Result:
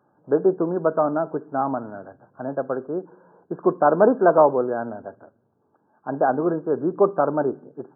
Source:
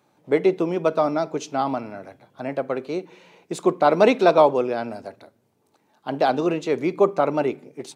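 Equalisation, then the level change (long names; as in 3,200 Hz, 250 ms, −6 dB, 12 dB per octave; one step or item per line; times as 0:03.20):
linear-phase brick-wall low-pass 1,700 Hz
0.0 dB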